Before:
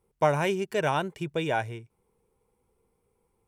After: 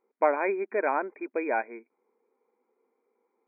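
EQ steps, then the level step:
linear-phase brick-wall band-pass 220–2,500 Hz
0.0 dB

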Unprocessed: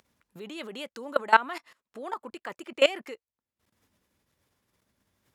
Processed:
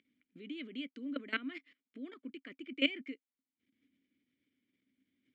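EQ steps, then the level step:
formant filter i
high-shelf EQ 4,100 Hz −7 dB
+6.5 dB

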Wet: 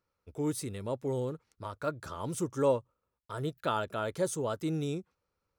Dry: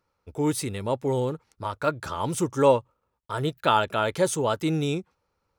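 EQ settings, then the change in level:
parametric band 860 Hz −5.5 dB 0.36 octaves
dynamic equaliser 2,600 Hz, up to −7 dB, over −43 dBFS, Q 1
−7.0 dB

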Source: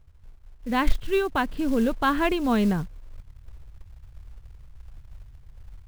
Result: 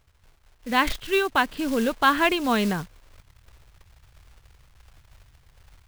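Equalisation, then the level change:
spectral tilt +3 dB per octave
high-shelf EQ 6,400 Hz −9.5 dB
+4.0 dB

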